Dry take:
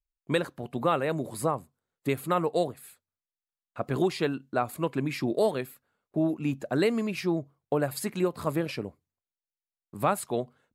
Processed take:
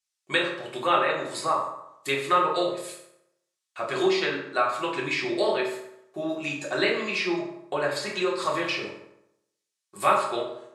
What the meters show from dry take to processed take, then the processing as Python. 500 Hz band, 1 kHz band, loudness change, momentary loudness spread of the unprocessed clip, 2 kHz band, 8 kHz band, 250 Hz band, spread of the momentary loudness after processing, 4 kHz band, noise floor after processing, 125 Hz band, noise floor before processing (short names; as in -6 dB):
+2.0 dB, +6.0 dB, +3.0 dB, 9 LU, +9.5 dB, +1.5 dB, -2.5 dB, 12 LU, +9.5 dB, -84 dBFS, -9.0 dB, under -85 dBFS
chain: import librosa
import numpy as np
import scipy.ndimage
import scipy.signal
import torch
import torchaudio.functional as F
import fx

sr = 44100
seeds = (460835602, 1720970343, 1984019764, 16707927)

y = fx.weighting(x, sr, curve='ITU-R 468')
y = fx.env_lowpass_down(y, sr, base_hz=2700.0, full_db=-26.0)
y = fx.rev_fdn(y, sr, rt60_s=0.81, lf_ratio=1.0, hf_ratio=0.65, size_ms=16.0, drr_db=-4.5)